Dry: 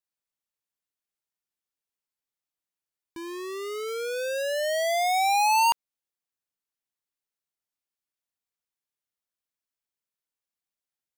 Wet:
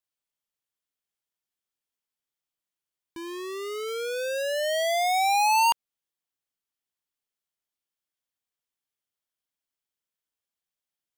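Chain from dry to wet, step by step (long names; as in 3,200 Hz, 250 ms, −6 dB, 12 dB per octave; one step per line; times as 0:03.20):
parametric band 3,200 Hz +4.5 dB 0.2 octaves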